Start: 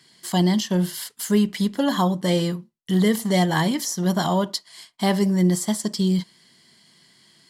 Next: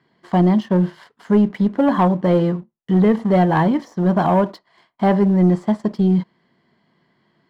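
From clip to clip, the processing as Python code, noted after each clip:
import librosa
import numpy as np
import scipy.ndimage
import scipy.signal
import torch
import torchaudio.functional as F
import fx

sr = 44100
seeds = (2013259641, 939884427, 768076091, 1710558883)

y = scipy.signal.sosfilt(scipy.signal.butter(2, 1100.0, 'lowpass', fs=sr, output='sos'), x)
y = fx.low_shelf(y, sr, hz=360.0, db=-5.5)
y = fx.leveller(y, sr, passes=1)
y = F.gain(torch.from_numpy(y), 6.0).numpy()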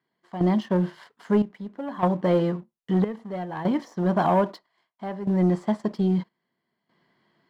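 y = fx.low_shelf(x, sr, hz=230.0, db=-6.5)
y = fx.step_gate(y, sr, bpm=74, pattern='..xxxxx.', floor_db=-12.0, edge_ms=4.5)
y = F.gain(torch.from_numpy(y), -3.0).numpy()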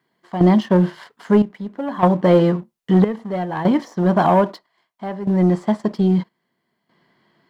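y = fx.rider(x, sr, range_db=5, speed_s=2.0)
y = F.gain(torch.from_numpy(y), 7.0).numpy()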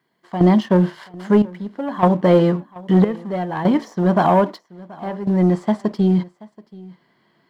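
y = x + 10.0 ** (-22.0 / 20.0) * np.pad(x, (int(730 * sr / 1000.0), 0))[:len(x)]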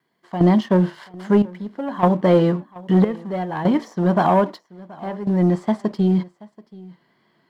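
y = fx.wow_flutter(x, sr, seeds[0], rate_hz=2.1, depth_cents=29.0)
y = F.gain(torch.from_numpy(y), -1.5).numpy()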